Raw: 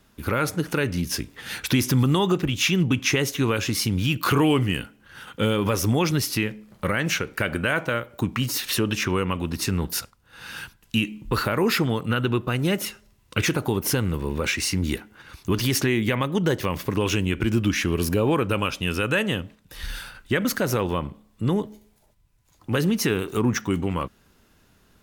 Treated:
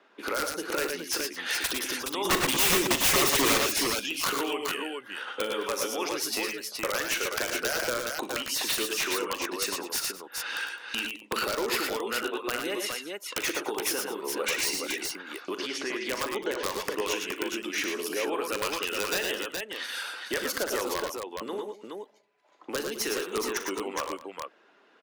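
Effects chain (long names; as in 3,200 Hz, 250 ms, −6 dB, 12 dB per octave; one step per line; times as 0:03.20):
on a send at −22 dB: convolution reverb RT60 0.65 s, pre-delay 3 ms
on the sum: downward compressor 6 to 1, threshold −29 dBFS, peak gain reduction 13 dB
low-pass that shuts in the quiet parts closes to 2,400 Hz, open at −28 dBFS
high-pass filter 350 Hz 24 dB per octave
0:02.25–0:03.58: leveller curve on the samples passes 3
0:15.55–0:16.69: high-frequency loss of the air 100 metres
wrap-around overflow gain 23.5 dB
reverb reduction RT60 0.69 s
multi-tap delay 41/59/102/116/211/420 ms −12/−15/−8/−6.5/−17/−4.5 dB
level +4 dB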